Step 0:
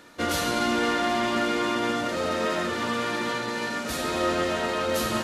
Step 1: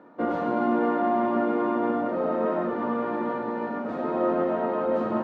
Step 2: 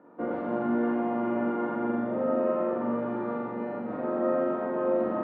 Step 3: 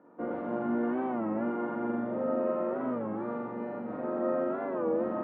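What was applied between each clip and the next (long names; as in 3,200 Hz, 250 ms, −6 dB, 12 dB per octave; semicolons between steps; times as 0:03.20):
Chebyshev band-pass filter 200–930 Hz, order 2; level +3 dB
high-frequency loss of the air 430 metres; flutter between parallel walls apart 7.2 metres, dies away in 1.1 s; level −4.5 dB
high-frequency loss of the air 130 metres; wow of a warped record 33 1/3 rpm, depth 160 cents; level −3 dB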